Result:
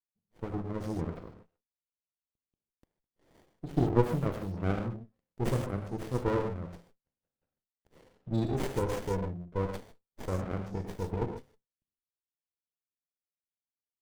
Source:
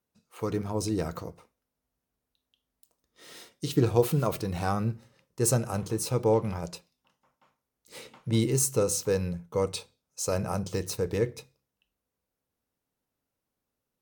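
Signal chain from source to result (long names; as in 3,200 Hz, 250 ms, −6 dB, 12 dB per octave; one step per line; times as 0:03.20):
power curve on the samples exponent 1.4
gate on every frequency bin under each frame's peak −20 dB strong
reverb whose tail is shaped and stops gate 170 ms flat, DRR 2.5 dB
windowed peak hold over 33 samples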